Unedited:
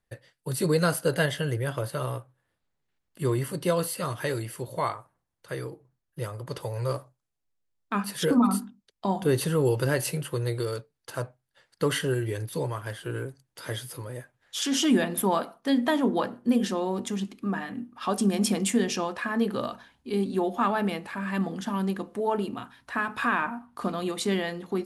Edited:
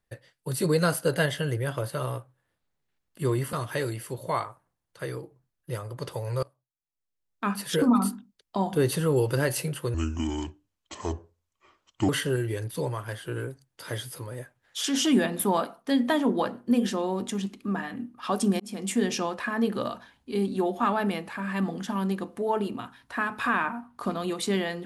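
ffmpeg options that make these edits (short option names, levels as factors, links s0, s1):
-filter_complex "[0:a]asplit=6[s0][s1][s2][s3][s4][s5];[s0]atrim=end=3.532[s6];[s1]atrim=start=4.018:end=6.92,asetpts=PTS-STARTPTS,afade=t=out:st=2.898:d=0.004:c=hsin:silence=0.0668344[s7];[s2]atrim=start=6.92:end=10.434,asetpts=PTS-STARTPTS,afade=t=in:d=1.03:c=qua:silence=0.0668344[s8];[s3]atrim=start=10.43:end=11.87,asetpts=PTS-STARTPTS,asetrate=29547,aresample=44100,atrim=end_sample=94782,asetpts=PTS-STARTPTS[s9];[s4]atrim=start=11.866:end=18.38,asetpts=PTS-STARTPTS,afade=t=out:st=6.51:d=0.004:c=hsin[s10];[s5]atrim=start=18.38,asetpts=PTS-STARTPTS,afade=t=in:d=0.45[s11];[s7][s8]concat=n=2:v=0:a=1[s12];[s6][s12]acrossfade=d=0.004:c1=hsin:c2=hsin[s13];[s13][s9]acrossfade=d=0.004:c1=hsin:c2=hsin[s14];[s10][s11]concat=n=2:v=0:a=1[s15];[s14][s15]acrossfade=d=0.004:c1=hsin:c2=hsin"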